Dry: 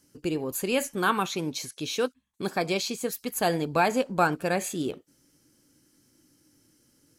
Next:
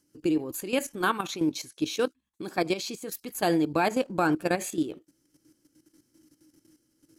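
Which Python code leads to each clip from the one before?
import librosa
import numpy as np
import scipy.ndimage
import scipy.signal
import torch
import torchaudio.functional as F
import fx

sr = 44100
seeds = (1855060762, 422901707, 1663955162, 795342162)

y = fx.peak_eq(x, sr, hz=320.0, db=12.0, octaves=0.21)
y = fx.level_steps(y, sr, step_db=12)
y = y * 10.0 ** (1.0 / 20.0)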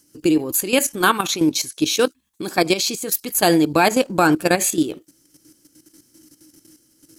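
y = fx.high_shelf(x, sr, hz=3700.0, db=9.0)
y = y * 10.0 ** (8.5 / 20.0)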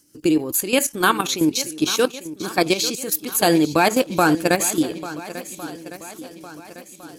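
y = fx.echo_swing(x, sr, ms=1407, ratio=1.5, feedback_pct=40, wet_db=-15.0)
y = y * 10.0 ** (-1.0 / 20.0)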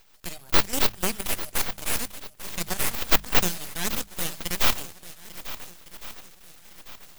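y = np.diff(x, prepend=0.0)
y = np.abs(y)
y = fx.hum_notches(y, sr, base_hz=50, count=4)
y = y * 10.0 ** (3.0 / 20.0)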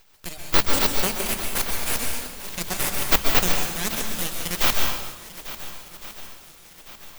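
y = fx.rev_plate(x, sr, seeds[0], rt60_s=1.1, hf_ratio=0.85, predelay_ms=115, drr_db=2.0)
y = y * 10.0 ** (1.0 / 20.0)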